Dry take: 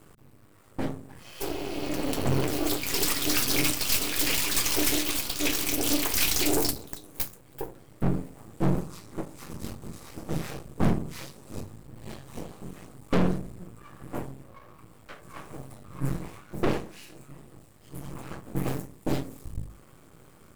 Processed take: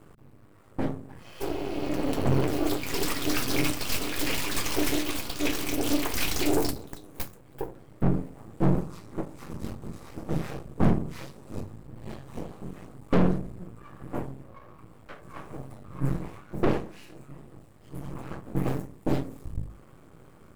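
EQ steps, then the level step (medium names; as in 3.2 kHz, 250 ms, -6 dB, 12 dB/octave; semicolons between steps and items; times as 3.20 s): treble shelf 2.8 kHz -10 dB; +2.0 dB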